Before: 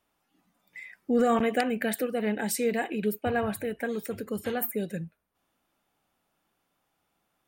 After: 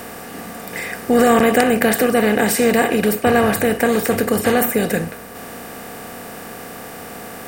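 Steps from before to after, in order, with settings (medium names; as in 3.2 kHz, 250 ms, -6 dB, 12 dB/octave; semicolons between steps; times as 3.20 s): spectral levelling over time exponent 0.4; trim +7.5 dB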